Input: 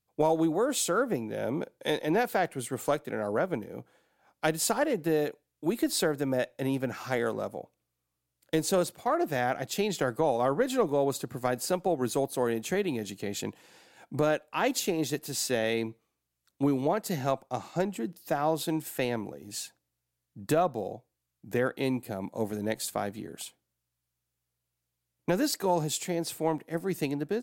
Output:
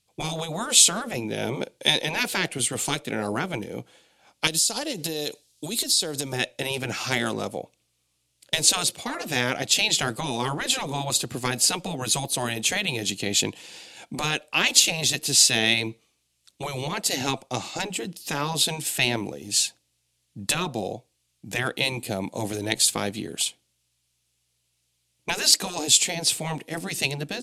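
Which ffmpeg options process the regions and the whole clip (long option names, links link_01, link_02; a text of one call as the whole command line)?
ffmpeg -i in.wav -filter_complex "[0:a]asettb=1/sr,asplit=3[link_01][link_02][link_03];[link_01]atrim=end=4.474[link_04];[link_02]atrim=start=4.47:end=6.33,asetpts=PTS-STARTPTS,afade=type=in:duration=0.004:curve=qsin,afade=type=out:start_time=1.856:duration=0.004:curve=qsin,highshelf=frequency=3100:width_type=q:width=1.5:gain=9,acompressor=threshold=-32dB:ratio=20:attack=3.2:release=140:knee=1:detection=peak[link_05];[link_03]atrim=start=6.326[link_06];[link_04][link_05]acrossfade=duration=0.004:curve1=hsin:curve2=qsin[link_07];[link_07][link_06]acrossfade=duration=0.004:curve1=qsin:curve2=hsin,lowpass=frequency=11000:width=0.5412,lowpass=frequency=11000:width=1.3066,afftfilt=real='re*lt(hypot(re,im),0.178)':imag='im*lt(hypot(re,im),0.178)':win_size=1024:overlap=0.75,highshelf=frequency=2100:width_type=q:width=1.5:gain=8,volume=7dB" out.wav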